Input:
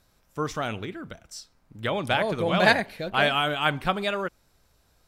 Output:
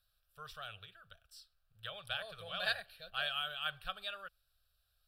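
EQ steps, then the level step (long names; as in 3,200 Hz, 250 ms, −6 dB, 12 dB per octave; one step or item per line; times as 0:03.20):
guitar amp tone stack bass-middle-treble 10-0-10
phaser with its sweep stopped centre 1,400 Hz, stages 8
−6.5 dB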